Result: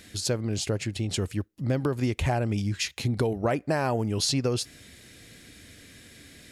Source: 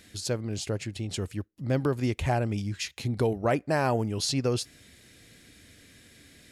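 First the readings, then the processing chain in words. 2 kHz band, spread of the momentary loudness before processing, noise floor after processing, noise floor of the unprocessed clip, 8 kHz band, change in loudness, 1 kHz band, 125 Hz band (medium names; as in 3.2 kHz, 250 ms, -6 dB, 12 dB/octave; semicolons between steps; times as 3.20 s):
+1.0 dB, 8 LU, -51 dBFS, -56 dBFS, +3.5 dB, +1.0 dB, -0.5 dB, +2.0 dB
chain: compression, threshold -26 dBFS, peak gain reduction 6 dB; trim +4.5 dB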